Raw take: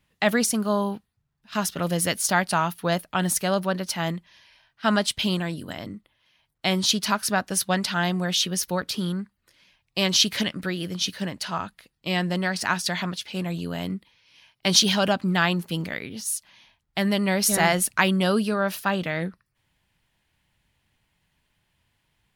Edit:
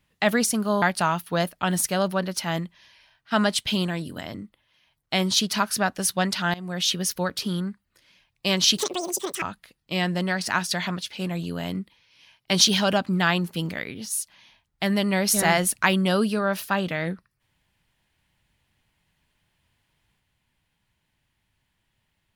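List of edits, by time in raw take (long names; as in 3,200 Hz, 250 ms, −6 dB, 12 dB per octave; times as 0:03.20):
0:00.82–0:02.34: remove
0:08.06–0:08.40: fade in, from −19.5 dB
0:10.29–0:11.57: play speed 197%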